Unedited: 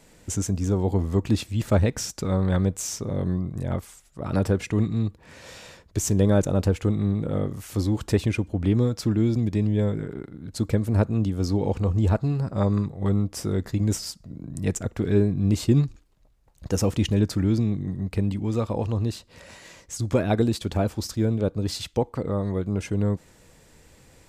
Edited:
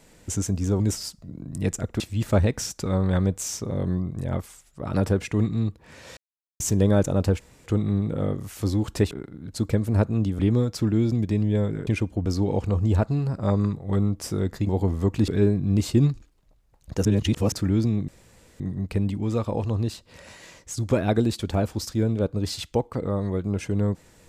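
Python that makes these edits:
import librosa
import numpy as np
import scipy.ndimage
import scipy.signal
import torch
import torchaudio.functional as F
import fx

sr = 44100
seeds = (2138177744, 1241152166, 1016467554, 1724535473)

y = fx.edit(x, sr, fx.swap(start_s=0.8, length_s=0.59, other_s=13.82, other_length_s=1.2),
    fx.silence(start_s=5.56, length_s=0.43),
    fx.insert_room_tone(at_s=6.79, length_s=0.26),
    fx.swap(start_s=8.24, length_s=0.39, other_s=10.11, other_length_s=1.28),
    fx.reverse_span(start_s=16.79, length_s=0.47),
    fx.insert_room_tone(at_s=17.82, length_s=0.52), tone=tone)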